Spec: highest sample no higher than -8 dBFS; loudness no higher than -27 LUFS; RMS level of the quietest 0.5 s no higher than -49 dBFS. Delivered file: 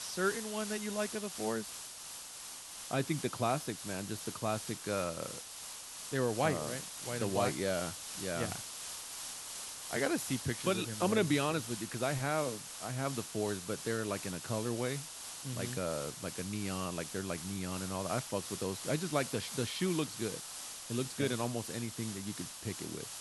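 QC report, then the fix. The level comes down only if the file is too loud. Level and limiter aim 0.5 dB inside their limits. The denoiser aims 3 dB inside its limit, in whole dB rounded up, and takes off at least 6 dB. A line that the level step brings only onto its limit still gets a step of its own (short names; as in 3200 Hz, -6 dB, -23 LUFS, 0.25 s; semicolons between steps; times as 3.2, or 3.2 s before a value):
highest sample -17.0 dBFS: OK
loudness -36.5 LUFS: OK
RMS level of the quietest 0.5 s -47 dBFS: fail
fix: denoiser 6 dB, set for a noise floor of -47 dBFS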